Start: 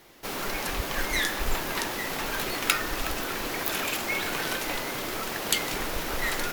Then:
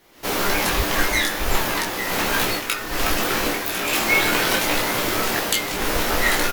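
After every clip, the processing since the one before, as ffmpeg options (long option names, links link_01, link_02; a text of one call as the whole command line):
ffmpeg -i in.wav -filter_complex "[0:a]dynaudnorm=framelen=120:gausssize=3:maxgain=12dB,asplit=2[link_01][link_02];[link_02]aecho=0:1:17|27:0.631|0.596[link_03];[link_01][link_03]amix=inputs=2:normalize=0,volume=-4dB" out.wav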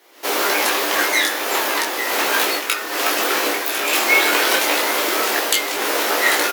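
ffmpeg -i in.wav -af "highpass=frequency=320:width=0.5412,highpass=frequency=320:width=1.3066,volume=3.5dB" out.wav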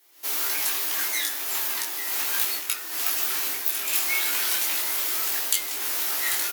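ffmpeg -i in.wav -filter_complex "[0:a]equalizer=frequency=510:width=5.6:gain=-10.5,acrossover=split=840[link_01][link_02];[link_01]asoftclip=type=hard:threshold=-27.5dB[link_03];[link_02]crystalizer=i=3.5:c=0[link_04];[link_03][link_04]amix=inputs=2:normalize=0,volume=-16.5dB" out.wav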